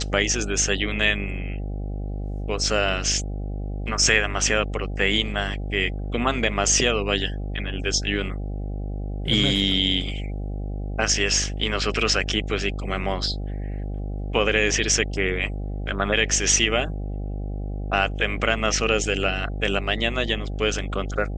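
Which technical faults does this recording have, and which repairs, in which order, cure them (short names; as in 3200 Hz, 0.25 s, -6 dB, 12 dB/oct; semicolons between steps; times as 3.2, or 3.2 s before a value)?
buzz 50 Hz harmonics 16 -29 dBFS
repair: de-hum 50 Hz, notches 16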